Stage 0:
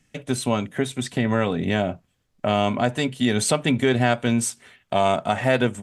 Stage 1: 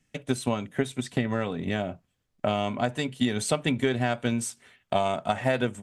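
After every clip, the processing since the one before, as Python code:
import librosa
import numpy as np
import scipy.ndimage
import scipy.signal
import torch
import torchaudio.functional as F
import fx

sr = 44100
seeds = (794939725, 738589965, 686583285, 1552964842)

y = fx.transient(x, sr, attack_db=7, sustain_db=2)
y = y * librosa.db_to_amplitude(-8.0)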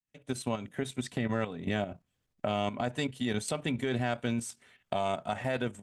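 y = fx.fade_in_head(x, sr, length_s=0.54)
y = fx.level_steps(y, sr, step_db=10)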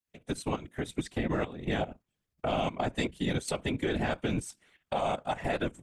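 y = fx.transient(x, sr, attack_db=0, sustain_db=-5)
y = fx.whisperise(y, sr, seeds[0])
y = y * librosa.db_to_amplitude(1.0)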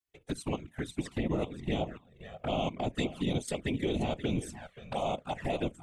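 y = x + 10.0 ** (-13.5 / 20.0) * np.pad(x, (int(529 * sr / 1000.0), 0))[:len(x)]
y = fx.env_flanger(y, sr, rest_ms=2.7, full_db=-26.5)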